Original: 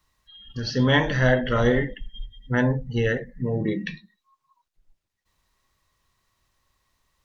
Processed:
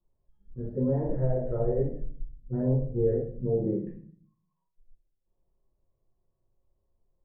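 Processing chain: 1.14–1.78 bell 250 Hz -9 dB; limiter -14.5 dBFS, peak gain reduction 7.5 dB; ladder low-pass 700 Hz, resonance 35%; flange 1 Hz, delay 8.8 ms, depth 9.1 ms, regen -74%; shoebox room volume 38 m³, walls mixed, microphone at 0.92 m

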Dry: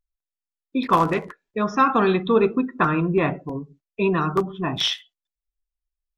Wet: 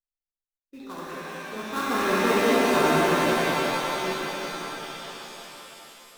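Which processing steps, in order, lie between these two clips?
Doppler pass-by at 2.64, 9 m/s, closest 2.6 m; bell 100 Hz -6 dB 1.6 oct; in parallel at -4.5 dB: sample-rate reducer 2500 Hz, jitter 20%; on the sum: random-step tremolo; on a send: thinning echo 0.188 s, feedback 71%, high-pass 410 Hz, level -5 dB; on the sum: shimmer reverb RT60 3.2 s, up +7 st, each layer -2 dB, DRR -5.5 dB; gain -5.5 dB

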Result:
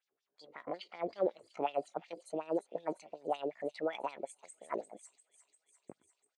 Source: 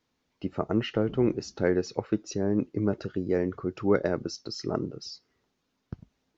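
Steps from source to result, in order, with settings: pitch shift +8 st; LFO band-pass sine 5.4 Hz 360–5000 Hz; thin delay 0.348 s, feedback 68%, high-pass 5200 Hz, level -8.5 dB; gain -2.5 dB

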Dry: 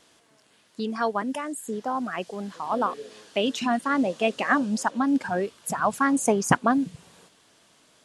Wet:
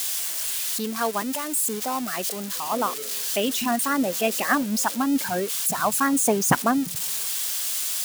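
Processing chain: switching spikes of -20 dBFS

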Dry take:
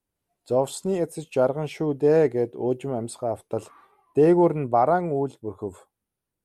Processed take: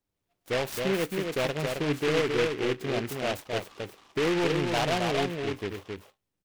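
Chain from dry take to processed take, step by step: notch 2300 Hz, Q 5.2; in parallel at +1 dB: limiter -16.5 dBFS, peak gain reduction 7.5 dB; on the sum: soft clip -14 dBFS, distortion -12 dB; resonator 98 Hz, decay 0.21 s, harmonics all, mix 40%; on a send: echo 0.268 s -4 dB; on the sum: noise-modulated delay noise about 1900 Hz, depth 0.14 ms; gain -5 dB

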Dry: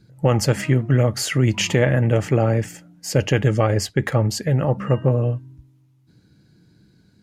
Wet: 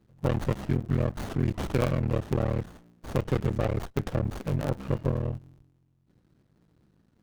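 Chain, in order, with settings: cycle switcher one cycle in 3, muted; running maximum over 17 samples; gain -8 dB

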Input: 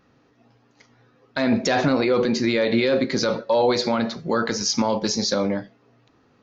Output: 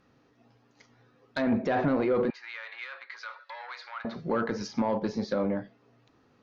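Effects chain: treble ducked by the level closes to 1700 Hz, closed at -19.5 dBFS; soft clip -12.5 dBFS, distortion -21 dB; 2.3–4.05 HPF 1200 Hz 24 dB/oct; gain -4.5 dB

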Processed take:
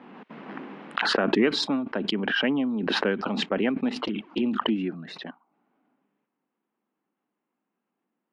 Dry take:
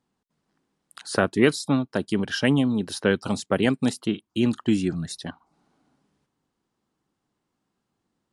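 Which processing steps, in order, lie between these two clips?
Chebyshev band-pass 210–2600 Hz, order 3; 3.95–4.76 envelope flanger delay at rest 7.2 ms, full sweep at -18.5 dBFS; backwards sustainer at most 23 dB/s; gain -3.5 dB

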